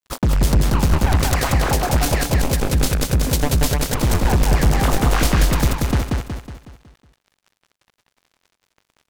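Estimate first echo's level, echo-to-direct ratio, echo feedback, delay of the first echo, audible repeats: −3.0 dB, −2.0 dB, 47%, 184 ms, 5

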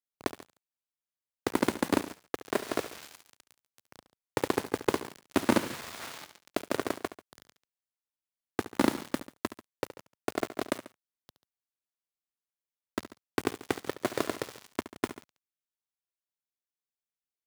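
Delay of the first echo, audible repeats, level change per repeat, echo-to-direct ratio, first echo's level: 70 ms, 2, −4.5 dB, −12.5 dB, −14.0 dB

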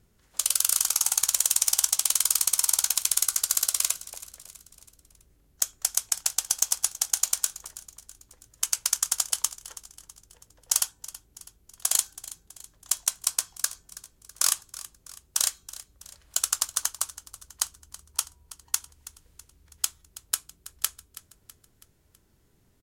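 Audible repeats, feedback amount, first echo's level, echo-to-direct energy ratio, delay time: 4, 51%, −17.0 dB, −15.5 dB, 326 ms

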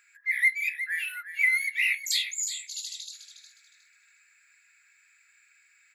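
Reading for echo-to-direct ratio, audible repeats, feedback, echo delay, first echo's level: −10.5 dB, 2, 24%, 361 ms, −11.0 dB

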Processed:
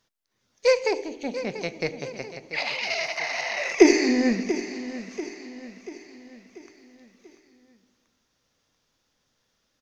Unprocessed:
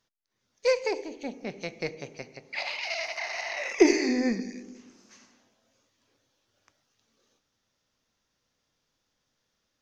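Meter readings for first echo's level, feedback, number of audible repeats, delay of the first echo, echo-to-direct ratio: −13.0 dB, 49%, 4, 688 ms, −12.0 dB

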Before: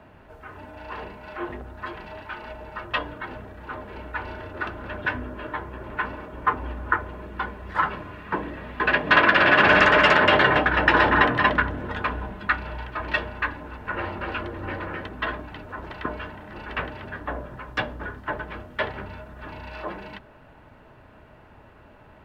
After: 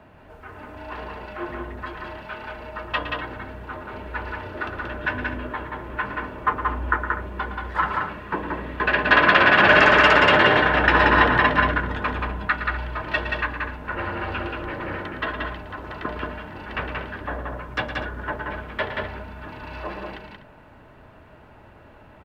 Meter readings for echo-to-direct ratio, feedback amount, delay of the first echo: −2.5 dB, repeats not evenly spaced, 113 ms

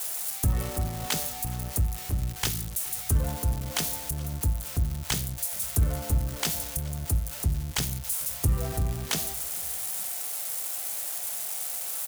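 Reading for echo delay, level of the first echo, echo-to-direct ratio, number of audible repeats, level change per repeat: 424 ms, −21.5 dB, −20.5 dB, 2, −5.0 dB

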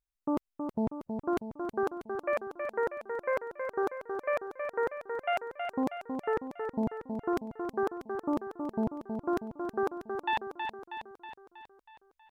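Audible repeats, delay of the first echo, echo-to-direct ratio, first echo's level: 6, 320 ms, −4.5 dB, −6.0 dB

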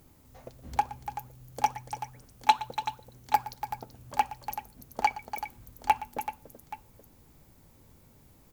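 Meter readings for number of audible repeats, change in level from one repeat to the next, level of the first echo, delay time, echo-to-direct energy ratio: 4, repeats not evenly spaced, −17.5 dB, 119 ms, −8.0 dB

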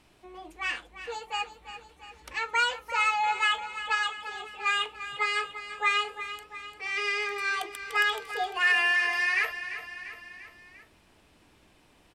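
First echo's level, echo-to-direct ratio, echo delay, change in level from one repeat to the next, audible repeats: −12.0 dB, −10.5 dB, 345 ms, −4.5 dB, 4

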